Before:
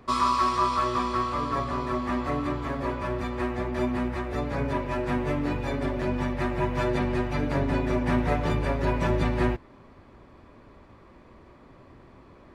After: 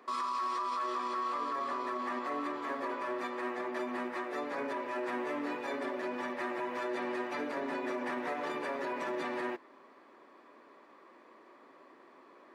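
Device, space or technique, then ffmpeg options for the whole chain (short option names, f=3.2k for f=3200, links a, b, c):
laptop speaker: -af "highpass=f=290:w=0.5412,highpass=f=290:w=1.3066,equalizer=f=1.1k:t=o:w=0.43:g=4,equalizer=f=1.8k:t=o:w=0.32:g=4.5,alimiter=limit=-23dB:level=0:latency=1:release=37,volume=-4.5dB"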